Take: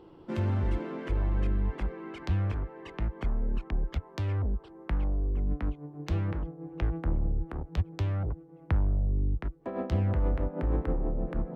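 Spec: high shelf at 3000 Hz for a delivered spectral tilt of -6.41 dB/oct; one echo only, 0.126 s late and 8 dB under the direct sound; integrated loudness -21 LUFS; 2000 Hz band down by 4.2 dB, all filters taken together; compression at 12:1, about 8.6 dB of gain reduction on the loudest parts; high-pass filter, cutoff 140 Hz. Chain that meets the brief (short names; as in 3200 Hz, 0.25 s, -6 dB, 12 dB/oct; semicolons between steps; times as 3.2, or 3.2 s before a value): HPF 140 Hz; bell 2000 Hz -3 dB; high shelf 3000 Hz -7 dB; compressor 12:1, threshold -37 dBFS; echo 0.126 s -8 dB; gain +21.5 dB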